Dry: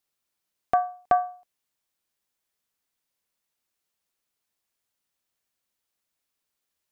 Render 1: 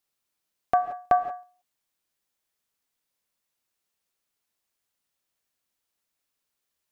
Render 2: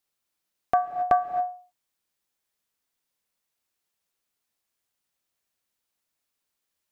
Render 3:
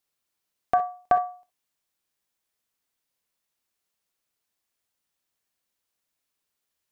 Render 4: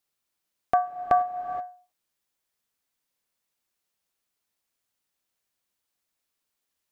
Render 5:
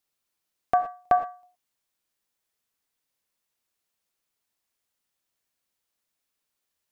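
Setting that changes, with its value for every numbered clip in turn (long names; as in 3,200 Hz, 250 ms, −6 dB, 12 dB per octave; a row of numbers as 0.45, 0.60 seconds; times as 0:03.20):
reverb whose tail is shaped and stops, gate: 200, 300, 80, 500, 140 milliseconds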